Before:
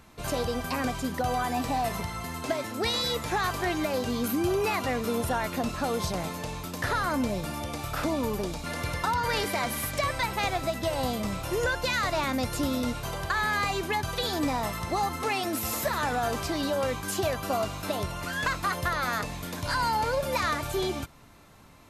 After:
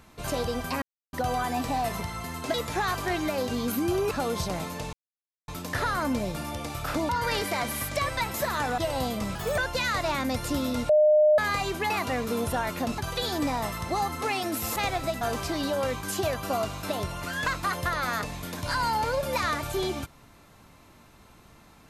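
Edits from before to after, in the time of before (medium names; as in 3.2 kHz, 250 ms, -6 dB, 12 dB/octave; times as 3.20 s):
0.82–1.13 s: mute
2.54–3.10 s: delete
4.67–5.75 s: move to 13.99 s
6.57 s: insert silence 0.55 s
8.18–9.11 s: delete
10.36–10.81 s: swap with 15.77–16.21 s
11.38–11.67 s: speed 125%
12.98–13.47 s: bleep 608 Hz -15.5 dBFS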